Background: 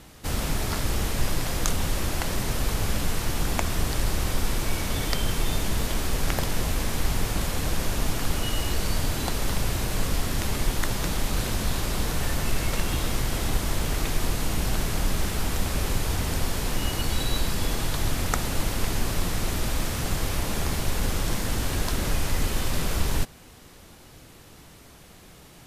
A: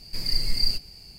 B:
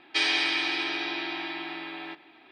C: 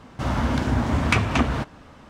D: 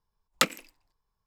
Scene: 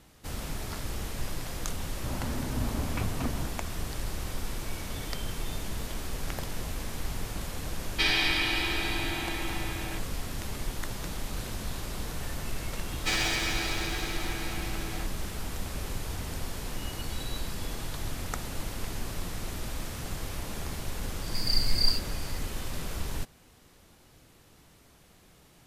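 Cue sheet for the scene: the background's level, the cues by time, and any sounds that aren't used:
background -9 dB
1.85 s: add C -16.5 dB + tilt shelf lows +6 dB, about 1.3 kHz
7.84 s: add B -1 dB
12.91 s: add B -2 dB + comb filter that takes the minimum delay 9.2 ms
21.21 s: add A -1.5 dB
not used: D

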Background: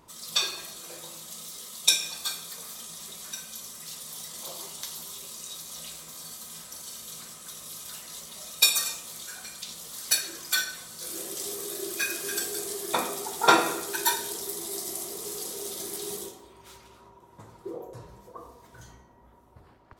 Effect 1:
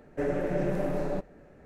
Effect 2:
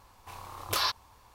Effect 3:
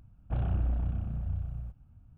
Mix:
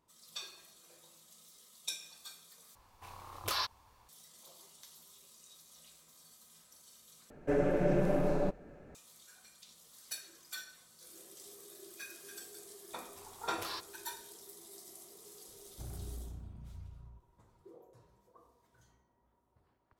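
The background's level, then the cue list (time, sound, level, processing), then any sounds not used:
background -18.5 dB
2.75 s: replace with 2 -6 dB
7.30 s: replace with 1 -0.5 dB + band-stop 1.9 kHz, Q 11
12.89 s: add 2 -14 dB
15.48 s: add 3 -15.5 dB + peaking EQ 310 Hz +4.5 dB

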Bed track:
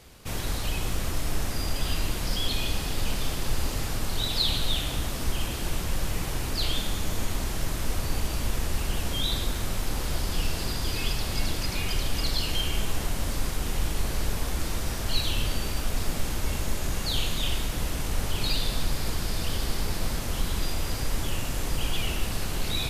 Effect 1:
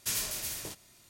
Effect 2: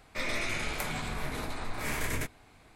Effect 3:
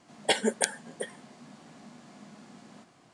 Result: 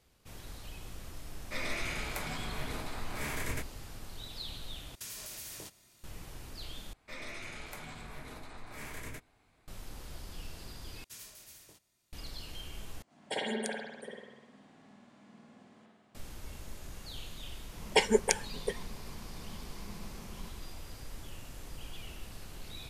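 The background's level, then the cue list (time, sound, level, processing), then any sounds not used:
bed track -17 dB
1.36 s: add 2 -4 dB
4.95 s: replace with 1 -4 dB + compression, threshold -36 dBFS
6.93 s: replace with 2 -11 dB
11.04 s: replace with 1 -17 dB
13.02 s: replace with 3 -14 dB + spring tank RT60 1.1 s, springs 50 ms, chirp 20 ms, DRR -6 dB
17.67 s: add 3 -1 dB + rippled EQ curve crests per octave 0.79, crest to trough 11 dB

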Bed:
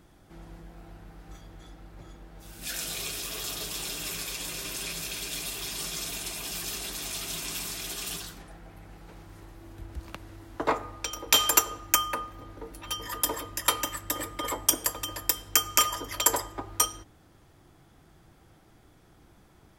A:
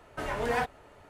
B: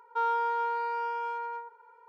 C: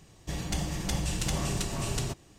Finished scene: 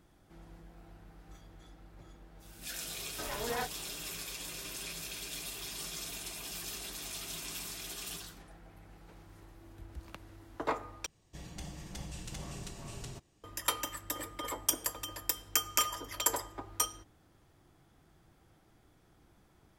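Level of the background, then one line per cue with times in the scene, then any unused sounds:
bed -7 dB
3.01 s: add A -7.5 dB
11.06 s: replace with C -13 dB
not used: B

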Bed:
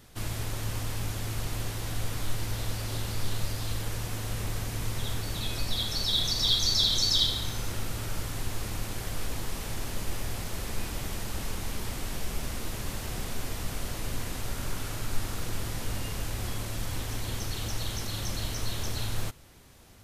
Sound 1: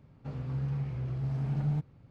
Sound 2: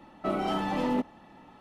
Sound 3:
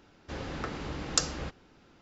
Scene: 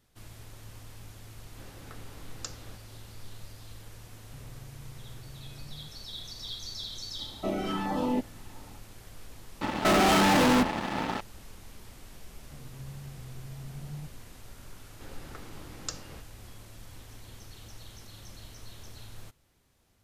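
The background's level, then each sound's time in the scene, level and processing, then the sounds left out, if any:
bed -14.5 dB
1.27 s: add 3 -13.5 dB
4.08 s: add 1 -7.5 dB + compression, threshold -39 dBFS
7.19 s: add 2 -0.5 dB + LFO notch saw down 1.5 Hz 480–3200 Hz
9.61 s: replace with 2 -7.5 dB + fuzz box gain 47 dB, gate -55 dBFS
12.26 s: add 1 -11 dB
14.71 s: add 3 -10.5 dB

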